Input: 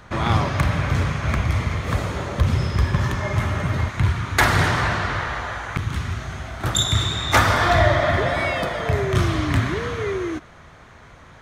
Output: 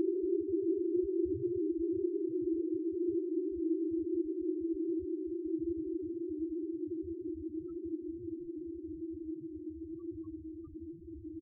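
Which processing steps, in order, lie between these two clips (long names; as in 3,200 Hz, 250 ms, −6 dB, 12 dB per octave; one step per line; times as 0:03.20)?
extreme stretch with random phases 37×, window 1.00 s, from 0:10.36
slap from a distant wall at 300 metres, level −26 dB
spectral peaks only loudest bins 4
level −2.5 dB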